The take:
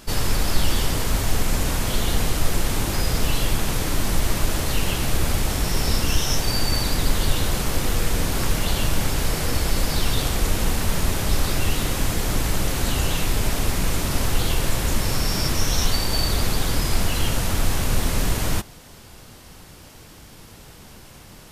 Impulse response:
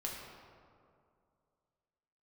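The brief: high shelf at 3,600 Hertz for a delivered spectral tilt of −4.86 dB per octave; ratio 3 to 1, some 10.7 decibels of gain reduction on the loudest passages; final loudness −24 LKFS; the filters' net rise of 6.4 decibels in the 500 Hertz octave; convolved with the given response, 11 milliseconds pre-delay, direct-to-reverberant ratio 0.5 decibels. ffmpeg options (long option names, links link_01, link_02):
-filter_complex "[0:a]equalizer=frequency=500:width_type=o:gain=8,highshelf=frequency=3600:gain=-3.5,acompressor=threshold=-27dB:ratio=3,asplit=2[link_01][link_02];[1:a]atrim=start_sample=2205,adelay=11[link_03];[link_02][link_03]afir=irnorm=-1:irlink=0,volume=-1.5dB[link_04];[link_01][link_04]amix=inputs=2:normalize=0,volume=5dB"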